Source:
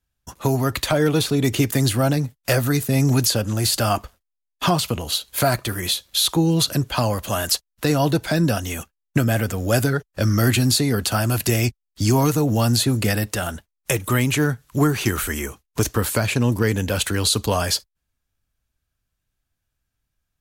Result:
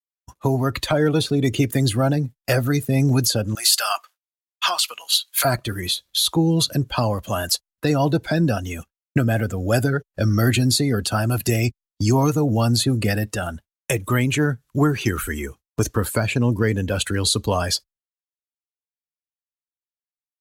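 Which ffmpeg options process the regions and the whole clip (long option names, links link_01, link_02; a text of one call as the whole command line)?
ffmpeg -i in.wav -filter_complex "[0:a]asettb=1/sr,asplit=3[link_01][link_02][link_03];[link_01]atrim=end=3.554[link_04];[link_02]atrim=start=3.55:end=5.45,asetpts=PTS-STARTPTS,afade=type=in:duration=0.004:curve=qsin,afade=type=out:start_time=1.896:duration=0.004:curve=qsin,highpass=1300,acontrast=32[link_05];[link_03]atrim=start=5.446[link_06];[link_04][link_05]acrossfade=duration=0.004:curve1=hsin:curve2=qsin[link_07];[link_07][link_06]acrossfade=duration=0.004:curve1=qsin:curve2=hsin,afftdn=noise_reduction=12:noise_floor=-29,agate=range=-33dB:threshold=-40dB:ratio=3:detection=peak" out.wav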